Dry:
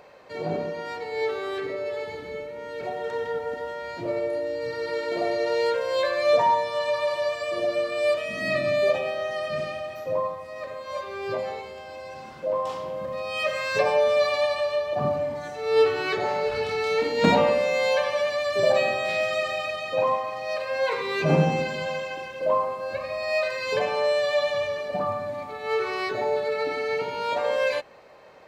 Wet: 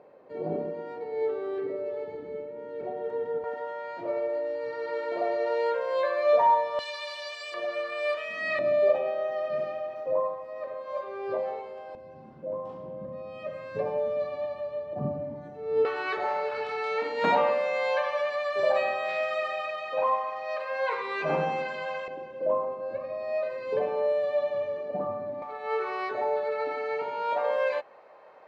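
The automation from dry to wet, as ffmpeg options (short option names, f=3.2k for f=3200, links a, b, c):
-af "asetnsamples=n=441:p=0,asendcmd='3.44 bandpass f 850;6.79 bandpass f 4000;7.54 bandpass f 1500;8.59 bandpass f 600;11.95 bandpass f 200;15.85 bandpass f 1100;22.08 bandpass f 350;25.42 bandpass f 870',bandpass=f=340:t=q:w=0.9:csg=0"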